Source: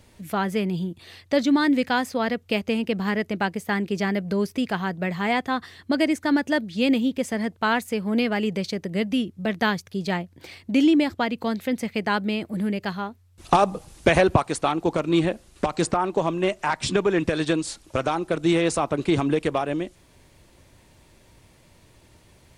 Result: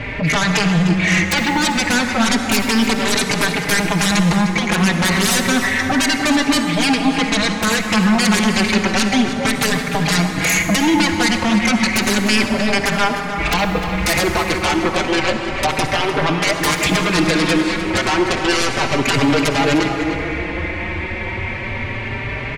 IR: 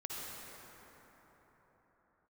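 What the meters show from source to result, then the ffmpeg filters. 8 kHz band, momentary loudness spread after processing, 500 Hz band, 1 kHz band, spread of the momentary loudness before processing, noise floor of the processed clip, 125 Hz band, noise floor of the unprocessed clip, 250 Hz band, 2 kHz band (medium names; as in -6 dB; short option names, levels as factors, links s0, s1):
+17.0 dB, 6 LU, +3.5 dB, +6.5 dB, 8 LU, -25 dBFS, +9.5 dB, -56 dBFS, +6.5 dB, +12.0 dB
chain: -filter_complex "[0:a]acompressor=threshold=0.0178:ratio=12,lowpass=f=2200:t=q:w=4.9,aeval=exprs='0.133*sin(PI/2*8.91*val(0)/0.133)':c=same,asplit=2[s0][s1];[s1]adelay=303.2,volume=0.355,highshelf=f=4000:g=-6.82[s2];[s0][s2]amix=inputs=2:normalize=0,asplit=2[s3][s4];[1:a]atrim=start_sample=2205[s5];[s4][s5]afir=irnorm=-1:irlink=0,volume=0.75[s6];[s3][s6]amix=inputs=2:normalize=0,asplit=2[s7][s8];[s8]adelay=4.6,afreqshift=0.31[s9];[s7][s9]amix=inputs=2:normalize=1,volume=1.58"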